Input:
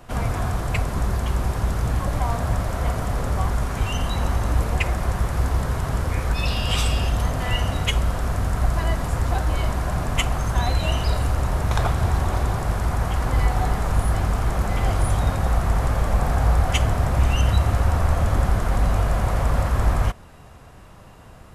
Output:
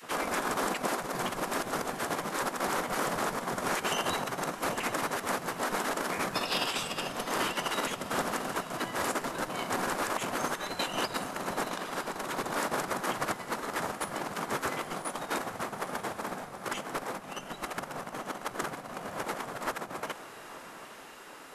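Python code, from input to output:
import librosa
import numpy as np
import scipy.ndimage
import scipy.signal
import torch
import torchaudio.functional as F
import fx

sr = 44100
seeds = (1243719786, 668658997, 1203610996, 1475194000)

y = fx.over_compress(x, sr, threshold_db=-24.0, ratio=-0.5)
y = fx.spec_gate(y, sr, threshold_db=-15, keep='weak')
y = fx.echo_diffused(y, sr, ms=880, feedback_pct=45, wet_db=-13)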